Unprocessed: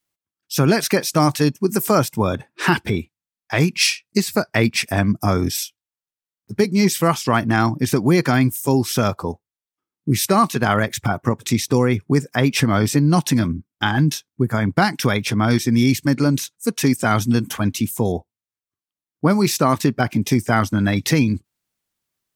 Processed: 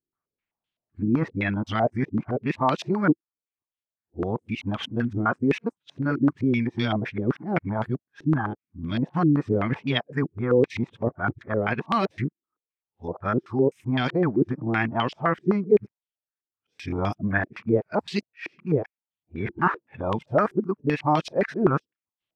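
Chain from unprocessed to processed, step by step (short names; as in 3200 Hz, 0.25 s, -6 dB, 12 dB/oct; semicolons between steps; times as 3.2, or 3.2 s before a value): whole clip reversed; stepped low-pass 7.8 Hz 340–3200 Hz; gain -9 dB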